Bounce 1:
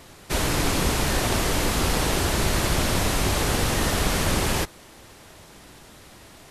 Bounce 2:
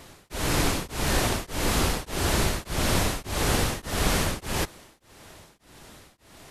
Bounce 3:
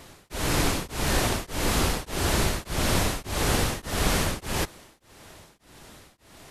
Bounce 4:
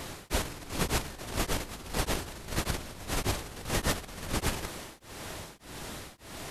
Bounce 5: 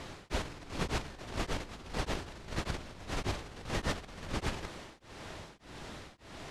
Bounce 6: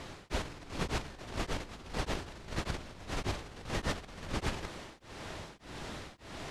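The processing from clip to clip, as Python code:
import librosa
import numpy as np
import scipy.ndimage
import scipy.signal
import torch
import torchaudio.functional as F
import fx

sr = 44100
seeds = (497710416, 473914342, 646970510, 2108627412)

y1 = x * np.abs(np.cos(np.pi * 1.7 * np.arange(len(x)) / sr))
y2 = y1
y3 = fx.over_compress(y2, sr, threshold_db=-32.0, ratio=-0.5)
y4 = scipy.signal.sosfilt(scipy.signal.bessel(2, 4800.0, 'lowpass', norm='mag', fs=sr, output='sos'), y3)
y4 = F.gain(torch.from_numpy(y4), -4.0).numpy()
y5 = fx.rider(y4, sr, range_db=3, speed_s=2.0)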